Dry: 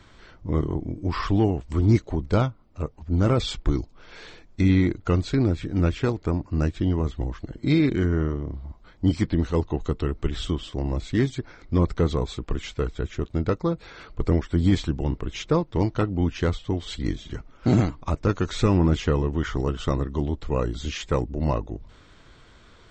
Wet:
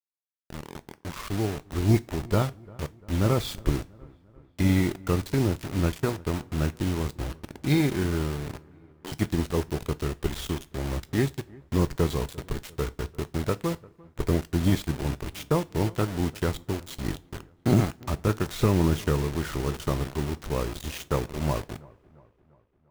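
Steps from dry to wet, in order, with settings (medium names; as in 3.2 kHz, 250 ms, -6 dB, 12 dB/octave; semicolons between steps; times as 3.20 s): fade-in on the opening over 2.12 s; 8.68–9.12 s: high-pass 410 Hz 24 dB/octave; Chebyshev shaper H 2 -20 dB, 3 -18 dB, 4 -45 dB, 7 -35 dB, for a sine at -8.5 dBFS; word length cut 6-bit, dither none; on a send: feedback echo behind a low-pass 346 ms, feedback 53%, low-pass 1.8 kHz, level -23.5 dB; on the sum: two-slope reverb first 0.25 s, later 2.3 s, from -28 dB, DRR 13.5 dB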